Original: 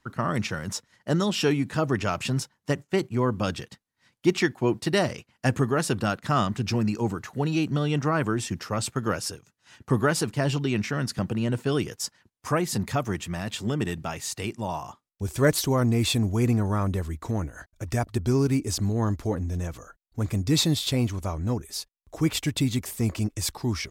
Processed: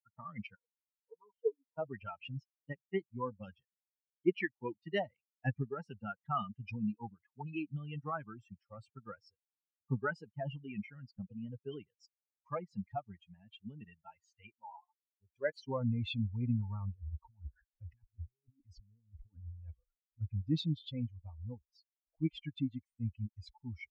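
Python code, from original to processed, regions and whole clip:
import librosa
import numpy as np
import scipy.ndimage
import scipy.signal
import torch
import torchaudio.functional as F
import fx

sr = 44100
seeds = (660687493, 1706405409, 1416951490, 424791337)

y = fx.chain(x, sr, fx.double_bandpass(hz=670.0, octaves=1.1),
    fx.comb(ms=4.2, depth=0.54), at=(0.55, 1.78))
y = fx.chain(y, sr, fx.highpass(hz=46.0, slope=12),
    fx.low_shelf(hz=270.0, db=-11.0), at=(14.57, 15.68))
y = fx.chain(y, sr, fx.over_compress(threshold_db=-32.0, ratio=-1.0),
    fx.filter_held_notch(hz=6.0, low_hz=230.0, high_hz=7400.0), at=(16.94, 20.21))
y = fx.bin_expand(y, sr, power=3.0)
y = scipy.signal.sosfilt(scipy.signal.butter(4, 3200.0, 'lowpass', fs=sr, output='sos'), y)
y = F.gain(torch.from_numpy(y), -5.0).numpy()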